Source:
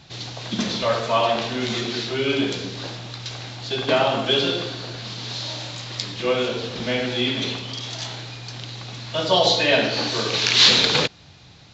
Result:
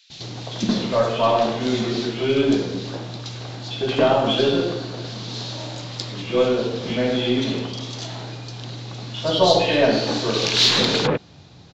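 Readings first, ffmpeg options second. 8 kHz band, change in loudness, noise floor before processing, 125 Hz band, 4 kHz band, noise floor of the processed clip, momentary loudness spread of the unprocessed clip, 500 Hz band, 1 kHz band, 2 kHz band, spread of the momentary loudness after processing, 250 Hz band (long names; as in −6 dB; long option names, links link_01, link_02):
can't be measured, 0.0 dB, −48 dBFS, +3.0 dB, −2.5 dB, −45 dBFS, 16 LU, +3.5 dB, +1.0 dB, −3.5 dB, 16 LU, +5.0 dB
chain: -filter_complex "[0:a]equalizer=frequency=270:width=0.37:gain=7,aeval=exprs='0.944*(cos(1*acos(clip(val(0)/0.944,-1,1)))-cos(1*PI/2))+0.015*(cos(6*acos(clip(val(0)/0.944,-1,1)))-cos(6*PI/2))':channel_layout=same,acrossover=split=2200[link_01][link_02];[link_01]adelay=100[link_03];[link_03][link_02]amix=inputs=2:normalize=0,volume=-2dB"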